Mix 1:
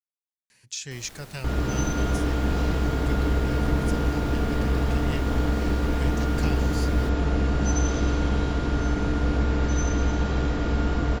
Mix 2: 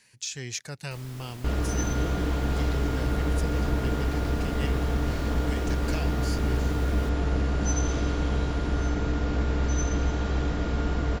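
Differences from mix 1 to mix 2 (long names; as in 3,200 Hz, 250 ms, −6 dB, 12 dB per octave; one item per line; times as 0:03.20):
speech: entry −0.50 s
second sound: send −8.0 dB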